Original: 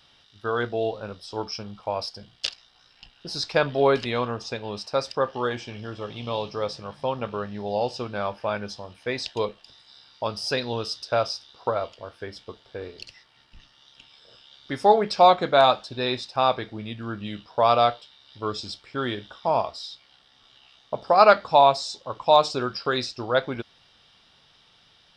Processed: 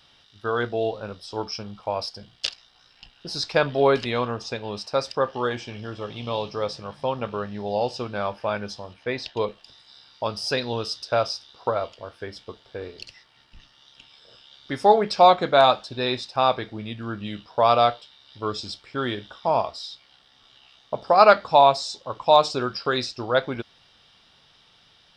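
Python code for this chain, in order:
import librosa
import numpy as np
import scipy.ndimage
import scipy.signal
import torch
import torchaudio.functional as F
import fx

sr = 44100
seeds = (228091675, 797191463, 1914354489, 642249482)

y = fx.bessel_lowpass(x, sr, hz=3900.0, order=2, at=(8.94, 9.48))
y = y * librosa.db_to_amplitude(1.0)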